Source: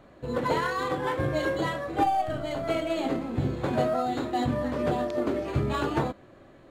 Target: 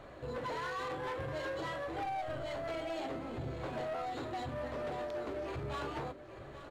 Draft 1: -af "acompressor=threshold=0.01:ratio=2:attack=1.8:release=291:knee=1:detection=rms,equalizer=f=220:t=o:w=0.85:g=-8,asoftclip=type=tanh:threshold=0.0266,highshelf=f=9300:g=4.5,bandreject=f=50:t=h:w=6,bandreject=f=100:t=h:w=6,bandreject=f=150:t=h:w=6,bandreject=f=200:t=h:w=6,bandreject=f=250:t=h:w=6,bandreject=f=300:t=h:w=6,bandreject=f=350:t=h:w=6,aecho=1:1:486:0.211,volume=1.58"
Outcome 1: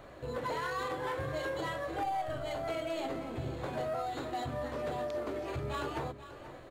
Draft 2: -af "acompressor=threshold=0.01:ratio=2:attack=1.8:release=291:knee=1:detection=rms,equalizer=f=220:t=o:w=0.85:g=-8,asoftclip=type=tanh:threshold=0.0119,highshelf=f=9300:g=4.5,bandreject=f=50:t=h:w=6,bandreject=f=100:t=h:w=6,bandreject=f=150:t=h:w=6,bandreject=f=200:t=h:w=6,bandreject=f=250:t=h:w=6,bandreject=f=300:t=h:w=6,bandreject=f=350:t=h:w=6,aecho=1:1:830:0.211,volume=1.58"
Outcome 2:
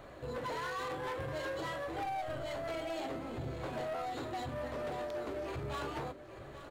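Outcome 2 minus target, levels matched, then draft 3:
8 kHz band +3.5 dB
-af "acompressor=threshold=0.01:ratio=2:attack=1.8:release=291:knee=1:detection=rms,equalizer=f=220:t=o:w=0.85:g=-8,asoftclip=type=tanh:threshold=0.0119,highshelf=f=9300:g=-6,bandreject=f=50:t=h:w=6,bandreject=f=100:t=h:w=6,bandreject=f=150:t=h:w=6,bandreject=f=200:t=h:w=6,bandreject=f=250:t=h:w=6,bandreject=f=300:t=h:w=6,bandreject=f=350:t=h:w=6,aecho=1:1:830:0.211,volume=1.58"

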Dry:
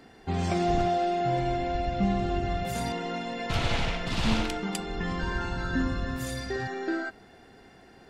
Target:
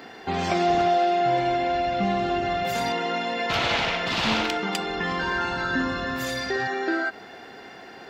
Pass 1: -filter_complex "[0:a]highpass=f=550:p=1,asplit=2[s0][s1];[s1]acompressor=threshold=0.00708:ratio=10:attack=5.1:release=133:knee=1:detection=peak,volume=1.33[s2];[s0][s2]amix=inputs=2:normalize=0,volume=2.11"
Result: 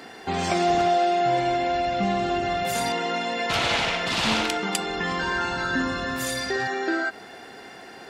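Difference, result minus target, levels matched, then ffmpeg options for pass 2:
8 kHz band +6.5 dB
-filter_complex "[0:a]highpass=f=550:p=1,equalizer=f=9300:w=1.4:g=-14,asplit=2[s0][s1];[s1]acompressor=threshold=0.00708:ratio=10:attack=5.1:release=133:knee=1:detection=peak,volume=1.33[s2];[s0][s2]amix=inputs=2:normalize=0,volume=2.11"

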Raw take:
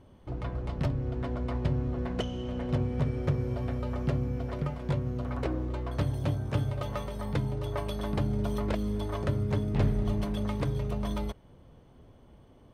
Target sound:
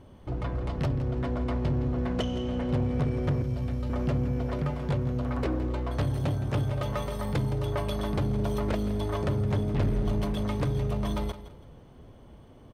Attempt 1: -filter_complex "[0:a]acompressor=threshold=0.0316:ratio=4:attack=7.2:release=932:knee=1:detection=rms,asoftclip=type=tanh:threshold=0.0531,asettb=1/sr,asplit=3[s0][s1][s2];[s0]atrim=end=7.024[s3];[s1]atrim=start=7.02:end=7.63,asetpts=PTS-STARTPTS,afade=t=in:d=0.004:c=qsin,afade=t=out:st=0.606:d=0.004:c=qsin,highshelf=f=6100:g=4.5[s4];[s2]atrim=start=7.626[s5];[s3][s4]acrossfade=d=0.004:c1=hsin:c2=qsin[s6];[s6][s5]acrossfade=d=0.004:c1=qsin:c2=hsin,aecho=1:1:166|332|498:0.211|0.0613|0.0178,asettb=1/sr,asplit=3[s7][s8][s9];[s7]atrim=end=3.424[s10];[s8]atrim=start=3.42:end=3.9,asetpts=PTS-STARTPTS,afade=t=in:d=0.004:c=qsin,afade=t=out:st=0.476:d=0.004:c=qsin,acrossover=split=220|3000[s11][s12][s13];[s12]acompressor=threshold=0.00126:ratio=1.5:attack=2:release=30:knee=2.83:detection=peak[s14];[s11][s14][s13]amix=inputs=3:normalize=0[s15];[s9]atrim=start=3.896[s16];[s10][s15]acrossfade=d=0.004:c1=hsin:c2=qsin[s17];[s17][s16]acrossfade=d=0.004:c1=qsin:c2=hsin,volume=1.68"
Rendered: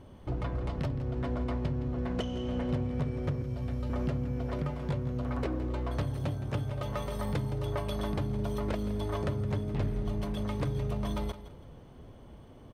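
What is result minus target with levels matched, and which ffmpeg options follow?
compression: peak gain reduction +9 dB
-filter_complex "[0:a]asoftclip=type=tanh:threshold=0.0531,asettb=1/sr,asplit=3[s0][s1][s2];[s0]atrim=end=7.024[s3];[s1]atrim=start=7.02:end=7.63,asetpts=PTS-STARTPTS,afade=t=in:d=0.004:c=qsin,afade=t=out:st=0.606:d=0.004:c=qsin,highshelf=f=6100:g=4.5[s4];[s2]atrim=start=7.626[s5];[s3][s4]acrossfade=d=0.004:c1=hsin:c2=qsin[s6];[s6][s5]acrossfade=d=0.004:c1=qsin:c2=hsin,aecho=1:1:166|332|498:0.211|0.0613|0.0178,asettb=1/sr,asplit=3[s7][s8][s9];[s7]atrim=end=3.424[s10];[s8]atrim=start=3.42:end=3.9,asetpts=PTS-STARTPTS,afade=t=in:d=0.004:c=qsin,afade=t=out:st=0.476:d=0.004:c=qsin,acrossover=split=220|3000[s11][s12][s13];[s12]acompressor=threshold=0.00126:ratio=1.5:attack=2:release=30:knee=2.83:detection=peak[s14];[s11][s14][s13]amix=inputs=3:normalize=0[s15];[s9]atrim=start=3.896[s16];[s10][s15]acrossfade=d=0.004:c1=hsin:c2=qsin[s17];[s17][s16]acrossfade=d=0.004:c1=qsin:c2=hsin,volume=1.68"

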